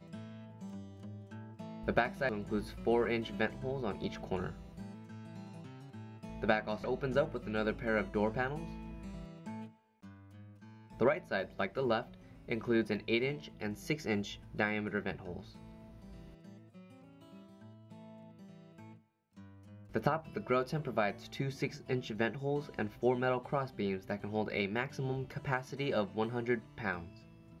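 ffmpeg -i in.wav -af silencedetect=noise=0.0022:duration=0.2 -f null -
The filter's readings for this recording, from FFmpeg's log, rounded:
silence_start: 9.71
silence_end: 10.02 | silence_duration: 0.32
silence_start: 18.97
silence_end: 19.37 | silence_duration: 0.39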